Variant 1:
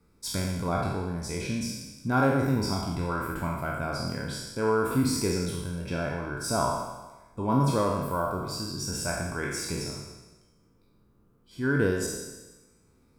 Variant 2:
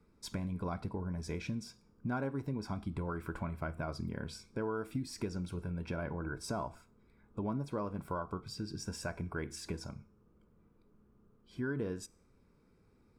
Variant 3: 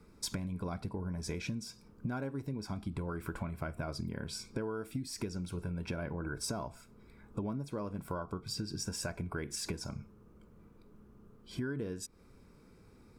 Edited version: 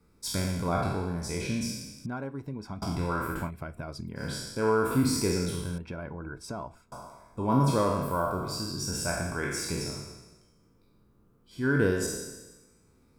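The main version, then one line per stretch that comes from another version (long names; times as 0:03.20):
1
0:02.06–0:02.82: punch in from 2
0:03.46–0:04.20: punch in from 3, crossfade 0.10 s
0:05.78–0:06.92: punch in from 2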